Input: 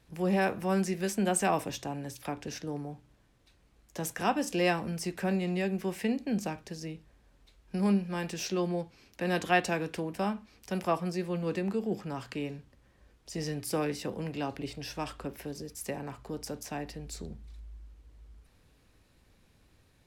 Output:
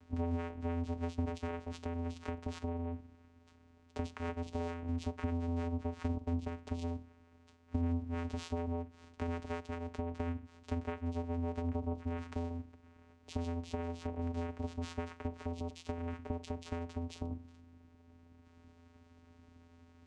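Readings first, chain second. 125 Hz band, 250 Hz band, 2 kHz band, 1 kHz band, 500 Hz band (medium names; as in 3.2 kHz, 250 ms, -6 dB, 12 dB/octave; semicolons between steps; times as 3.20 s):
-1.5 dB, -6.5 dB, -14.5 dB, -10.0 dB, -9.0 dB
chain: peaking EQ 1.5 kHz +4 dB; compression 12:1, threshold -40 dBFS, peak gain reduction 21.5 dB; vocoder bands 4, square 84.7 Hz; trim +7 dB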